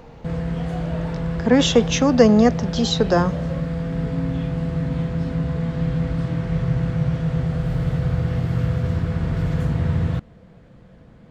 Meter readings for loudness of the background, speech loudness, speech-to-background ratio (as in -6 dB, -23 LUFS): -24.0 LUFS, -18.0 LUFS, 6.0 dB